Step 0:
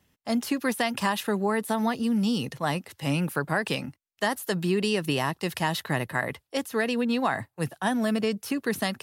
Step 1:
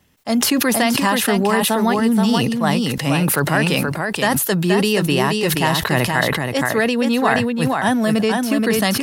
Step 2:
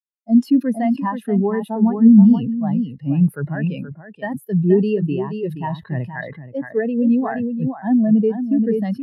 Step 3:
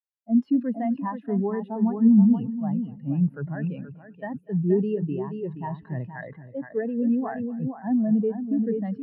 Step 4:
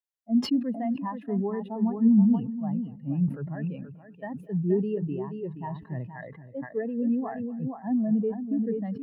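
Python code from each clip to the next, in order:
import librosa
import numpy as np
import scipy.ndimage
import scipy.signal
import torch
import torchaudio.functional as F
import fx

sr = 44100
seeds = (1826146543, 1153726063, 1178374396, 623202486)

y1 = x + 10.0 ** (-5.0 / 20.0) * np.pad(x, (int(476 * sr / 1000.0), 0))[:len(x)]
y1 = fx.sustainer(y1, sr, db_per_s=28.0)
y1 = y1 * librosa.db_to_amplitude(7.5)
y2 = fx.spectral_expand(y1, sr, expansion=2.5)
y3 = scipy.signal.sosfilt(scipy.signal.butter(2, 1800.0, 'lowpass', fs=sr, output='sos'), y2)
y3 = fx.echo_feedback(y3, sr, ms=243, feedback_pct=53, wet_db=-22.5)
y3 = y3 * librosa.db_to_amplitude(-7.0)
y4 = fx.notch(y3, sr, hz=1500.0, q=6.2)
y4 = fx.sustainer(y4, sr, db_per_s=150.0)
y4 = y4 * librosa.db_to_amplitude(-3.0)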